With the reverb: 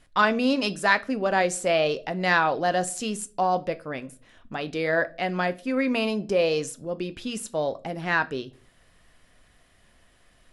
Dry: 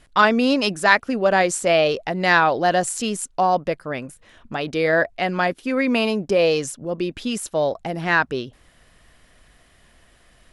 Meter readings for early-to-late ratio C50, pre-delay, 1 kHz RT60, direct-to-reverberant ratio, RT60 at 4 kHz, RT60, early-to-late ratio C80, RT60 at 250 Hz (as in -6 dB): 20.5 dB, 4 ms, 0.30 s, 11.5 dB, 0.30 s, 0.40 s, 26.5 dB, 0.50 s